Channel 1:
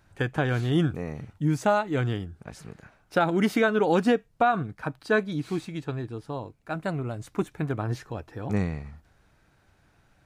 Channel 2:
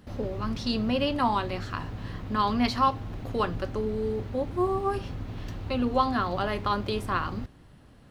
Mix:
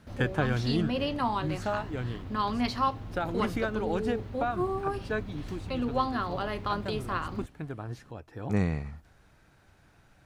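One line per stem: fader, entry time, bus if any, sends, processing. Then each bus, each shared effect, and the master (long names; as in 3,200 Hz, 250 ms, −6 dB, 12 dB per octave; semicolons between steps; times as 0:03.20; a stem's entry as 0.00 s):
+2.0 dB, 0.00 s, no send, automatic ducking −11 dB, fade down 1.10 s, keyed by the second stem
−4.0 dB, 0.00 s, no send, no processing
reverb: not used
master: no processing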